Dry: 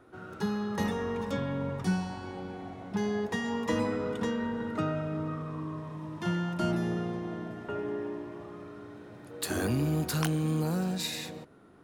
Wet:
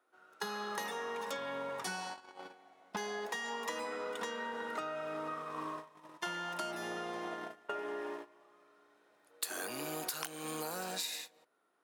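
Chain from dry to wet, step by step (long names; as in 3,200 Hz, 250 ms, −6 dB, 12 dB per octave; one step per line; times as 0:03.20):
noise gate −36 dBFS, range −24 dB
high-pass filter 640 Hz 12 dB per octave
high-shelf EQ 6,800 Hz +6.5 dB
downward compressor 10 to 1, threshold −47 dBFS, peak gain reduction 20.5 dB
level +10.5 dB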